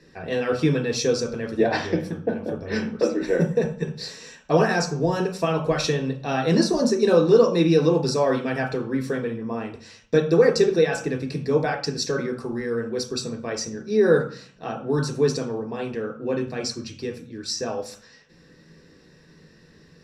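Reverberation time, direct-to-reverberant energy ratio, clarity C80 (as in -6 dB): 0.45 s, 1.5 dB, 13.5 dB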